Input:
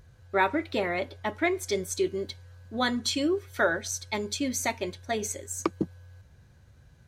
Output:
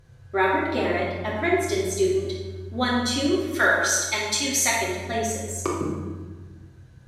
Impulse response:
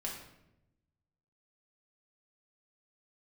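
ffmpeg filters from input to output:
-filter_complex "[0:a]asettb=1/sr,asplit=3[a][b][c];[a]atrim=end=3.314[d];[b]atrim=start=3.31:end=4.77,asetpts=PTS-STARTPTS,afade=t=in:d=0.004:c=qsin,afade=t=out:st=1.456:d=0.004:c=qsin,tiltshelf=f=710:g=-8[e];[c]atrim=start=4.766[f];[d][e]acrossfade=d=0.004:c1=hsin:c2=qsin[g];[g][f]acrossfade=d=0.004:c1=qsin:c2=hsin[h];[1:a]atrim=start_sample=2205,asetrate=26019,aresample=44100[i];[h][i]afir=irnorm=-1:irlink=0"

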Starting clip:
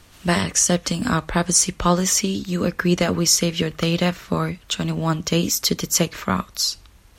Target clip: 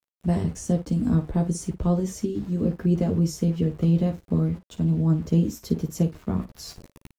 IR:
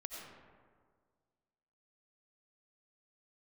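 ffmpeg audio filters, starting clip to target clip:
-filter_complex "[0:a]firequalizer=gain_entry='entry(150,0);entry(1300,-22);entry(8700,-10)':delay=0.05:min_phase=1,aeval=exprs='val(0)*gte(abs(val(0)),0.0075)':c=same,highshelf=f=3.3k:g=-11,areverse,acompressor=mode=upward:threshold=-34dB:ratio=2.5,areverse,bandreject=f=570:w=12,asplit=2[a][b];[b]aecho=0:1:13|54:0.562|0.251[c];[a][c]amix=inputs=2:normalize=0"

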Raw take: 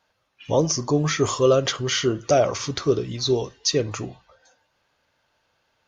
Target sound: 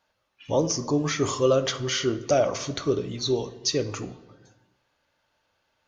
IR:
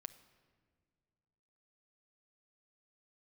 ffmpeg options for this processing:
-filter_complex "[0:a]asettb=1/sr,asplit=3[a][b][c];[a]atrim=end=2.644[d];[b]atrim=start=2.64:end=3.54,asetpts=PTS-STARTPTS,afade=t=in:d=0.004:c=qsin,afade=t=out:st=0.896:d=0.004:c=qsin,asuperstop=centerf=5000:order=4:qfactor=7.9[e];[c]atrim=start=3.536[f];[d][e]acrossfade=d=0.004:c1=hsin:c2=qsin[g];[g][f]acrossfade=d=0.004:c1=qsin:c2=hsin[h];[1:a]atrim=start_sample=2205,asetrate=83790,aresample=44100[i];[h][i]afir=irnorm=-1:irlink=0,volume=7.5dB"

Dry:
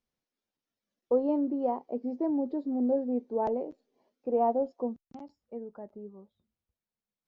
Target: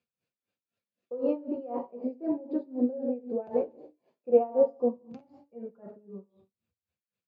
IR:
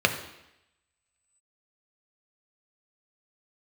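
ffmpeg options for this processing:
-filter_complex "[1:a]atrim=start_sample=2205,afade=t=out:st=0.34:d=0.01,atrim=end_sample=15435[a];[0:a][a]afir=irnorm=-1:irlink=0,aeval=exprs='val(0)*pow(10,-21*(0.5-0.5*cos(2*PI*3.9*n/s))/20)':c=same,volume=-9dB"

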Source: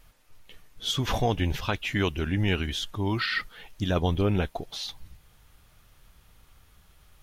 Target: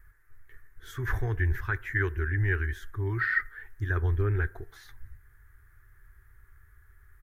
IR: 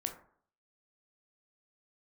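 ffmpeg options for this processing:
-filter_complex "[0:a]firequalizer=gain_entry='entry(110,0);entry(180,-27);entry(380,-3);entry(550,-23);entry(1700,7);entry(2700,-25);entry(4500,-24);entry(6800,-17);entry(13000,-7)':delay=0.05:min_phase=1,asplit=2[a][b];[1:a]atrim=start_sample=2205[c];[b][c]afir=irnorm=-1:irlink=0,volume=-12dB[d];[a][d]amix=inputs=2:normalize=0"

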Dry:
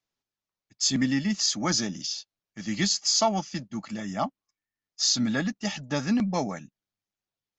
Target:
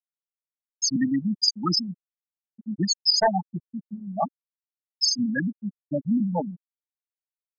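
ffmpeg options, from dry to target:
-af "aeval=exprs='(mod(5.01*val(0)+1,2)-1)/5.01':c=same,equalizer=f=170:w=4.5:g=7,afftfilt=real='re*gte(hypot(re,im),0.251)':imag='im*gte(hypot(re,im),0.251)':win_size=1024:overlap=0.75,bass=f=250:g=-10,treble=f=4k:g=6,volume=6dB"

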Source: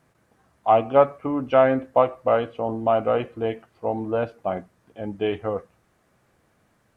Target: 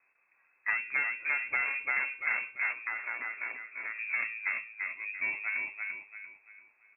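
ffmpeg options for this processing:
-filter_complex "[0:a]asplit=2[a][b];[b]aecho=0:1:341|682|1023|1364|1705:0.631|0.233|0.0864|0.032|0.0118[c];[a][c]amix=inputs=2:normalize=0,aeval=exprs='0.75*(cos(1*acos(clip(val(0)/0.75,-1,1)))-cos(1*PI/2))+0.00531*(cos(3*acos(clip(val(0)/0.75,-1,1)))-cos(3*PI/2))+0.0211*(cos(4*acos(clip(val(0)/0.75,-1,1)))-cos(4*PI/2))+0.15*(cos(6*acos(clip(val(0)/0.75,-1,1)))-cos(6*PI/2))+0.0266*(cos(8*acos(clip(val(0)/0.75,-1,1)))-cos(8*PI/2))':c=same,acompressor=threshold=-19dB:ratio=6,lowpass=f=2.3k:t=q:w=0.5098,lowpass=f=2.3k:t=q:w=0.6013,lowpass=f=2.3k:t=q:w=0.9,lowpass=f=2.3k:t=q:w=2.563,afreqshift=-2700,asettb=1/sr,asplit=3[d][e][f];[d]atrim=end=2.724[g];[e]atrim=start=2.72:end=3.99,asetpts=PTS-STARTPTS,afade=t=in:d=0.004:c=qsin,afade=t=out:st=1.266:d=0.004:c=qsin,acrossover=split=150 2100:gain=0.0794 1 0.0891[h][i][j];[h][i][j]amix=inputs=3:normalize=0[k];[f]atrim=start=3.986[l];[g][k]acrossfade=d=0.004:c1=hsin:c2=qsin[m];[m][l]acrossfade=d=0.004:c1=qsin:c2=hsin,volume=-7.5dB" -ar 32000 -c:a aac -b:a 32k

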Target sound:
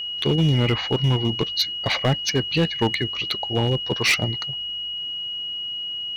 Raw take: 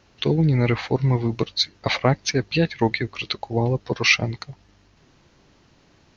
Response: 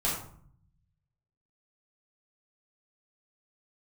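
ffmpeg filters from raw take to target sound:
-af "aeval=exprs='val(0)+0.0447*sin(2*PI*2900*n/s)':c=same,asoftclip=type=hard:threshold=-13.5dB"

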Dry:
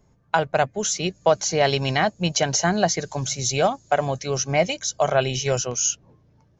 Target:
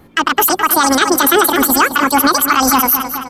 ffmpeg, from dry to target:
-filter_complex "[0:a]asplit=2[a][b];[b]adelay=422,lowpass=f=4.3k:p=1,volume=-12dB,asplit=2[c][d];[d]adelay=422,lowpass=f=4.3k:p=1,volume=0.52,asplit=2[e][f];[f]adelay=422,lowpass=f=4.3k:p=1,volume=0.52,asplit=2[g][h];[h]adelay=422,lowpass=f=4.3k:p=1,volume=0.52,asplit=2[i][j];[j]adelay=422,lowpass=f=4.3k:p=1,volume=0.52[k];[a][c][e][g][i][k]amix=inputs=6:normalize=0,asetrate=88200,aresample=44100,alimiter=level_in=16.5dB:limit=-1dB:release=50:level=0:latency=1,volume=-1dB"

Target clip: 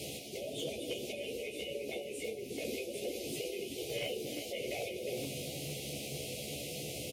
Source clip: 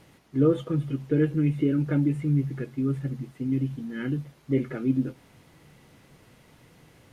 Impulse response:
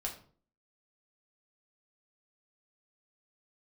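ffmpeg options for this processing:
-filter_complex "[0:a]tiltshelf=f=1.4k:g=-7,asplit=2[a][b];[b]adelay=14,volume=-3dB[c];[a][c]amix=inputs=2:normalize=0,asplit=2[d][e];[1:a]atrim=start_sample=2205,lowpass=3.1k,adelay=42[f];[e][f]afir=irnorm=-1:irlink=0,volume=-10dB[g];[d][g]amix=inputs=2:normalize=0,acompressor=threshold=-34dB:ratio=10,asuperstop=centerf=1300:order=12:qfactor=0.82,afftfilt=real='re*lt(hypot(re,im),0.02)':imag='im*lt(hypot(re,im),0.02)':win_size=1024:overlap=0.75,highpass=f=68:w=0.5412,highpass=f=68:w=1.3066,aecho=1:1:360:0.335,aeval=exprs='clip(val(0),-1,0.00422)':c=same,equalizer=f=490:w=1.2:g=8,volume=12.5dB"

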